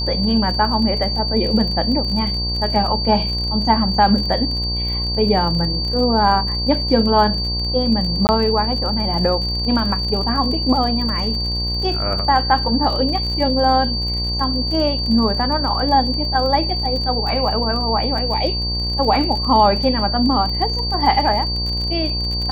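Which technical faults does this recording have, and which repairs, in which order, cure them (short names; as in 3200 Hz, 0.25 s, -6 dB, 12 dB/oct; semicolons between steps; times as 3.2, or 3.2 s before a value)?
buzz 60 Hz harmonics 18 -24 dBFS
crackle 34/s -25 dBFS
tone 4600 Hz -22 dBFS
8.27–8.29 gap 19 ms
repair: de-click; de-hum 60 Hz, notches 18; notch 4600 Hz, Q 30; interpolate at 8.27, 19 ms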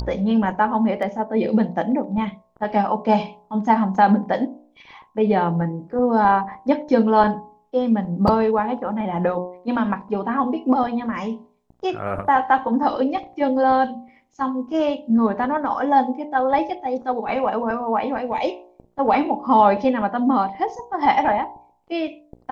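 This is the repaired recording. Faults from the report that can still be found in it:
none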